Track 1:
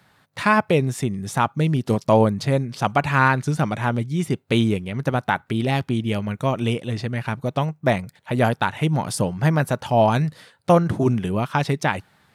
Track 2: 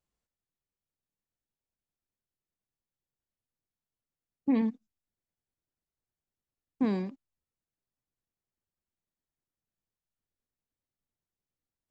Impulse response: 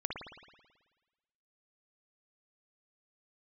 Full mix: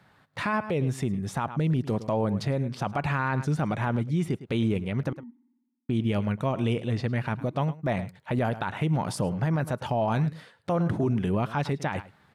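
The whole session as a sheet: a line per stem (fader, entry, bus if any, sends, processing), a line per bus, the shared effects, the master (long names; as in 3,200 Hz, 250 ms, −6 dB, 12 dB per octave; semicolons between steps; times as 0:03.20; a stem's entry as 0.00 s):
−1.0 dB, 0.00 s, muted 0:05.13–0:05.89, no send, echo send −19.5 dB, no processing
−17.5 dB, 0.60 s, send −18.5 dB, no echo send, three sine waves on the formant tracks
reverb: on, RT60 1.3 s, pre-delay 54 ms
echo: single-tap delay 106 ms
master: high-shelf EQ 3,900 Hz −10 dB; brickwall limiter −18 dBFS, peak gain reduction 11.5 dB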